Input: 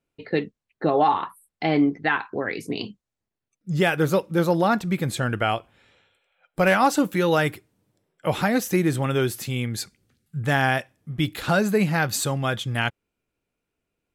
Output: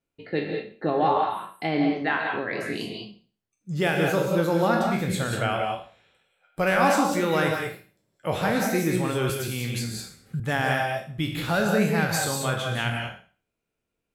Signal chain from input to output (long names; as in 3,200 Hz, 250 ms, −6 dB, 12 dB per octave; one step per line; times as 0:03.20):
peak hold with a decay on every bin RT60 0.40 s
reverb whose tail is shaped and stops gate 220 ms rising, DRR 2 dB
0:09.29–0:10.40: multiband upward and downward compressor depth 100%
level −5 dB